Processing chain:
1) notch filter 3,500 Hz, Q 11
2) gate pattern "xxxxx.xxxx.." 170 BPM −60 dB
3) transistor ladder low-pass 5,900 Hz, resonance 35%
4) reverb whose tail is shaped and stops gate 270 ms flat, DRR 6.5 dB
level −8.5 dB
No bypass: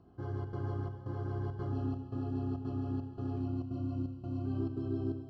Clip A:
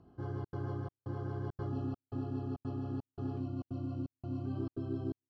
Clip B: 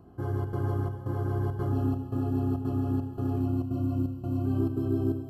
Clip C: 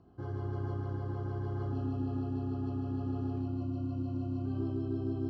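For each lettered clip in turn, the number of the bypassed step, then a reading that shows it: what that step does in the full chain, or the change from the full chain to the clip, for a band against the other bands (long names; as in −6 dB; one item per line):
4, change in integrated loudness −2.5 LU
3, change in integrated loudness +7.5 LU
2, change in crest factor −2.0 dB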